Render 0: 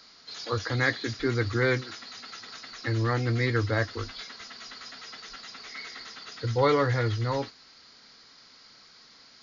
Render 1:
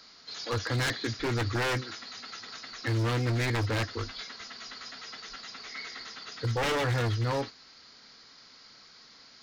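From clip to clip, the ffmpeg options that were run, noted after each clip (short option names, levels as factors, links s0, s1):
-af "aeval=exprs='0.0708*(abs(mod(val(0)/0.0708+3,4)-2)-1)':c=same"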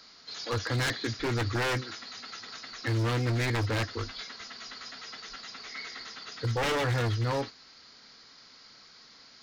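-af anull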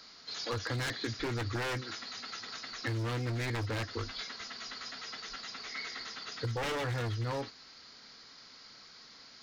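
-af "acompressor=threshold=0.0251:ratio=6"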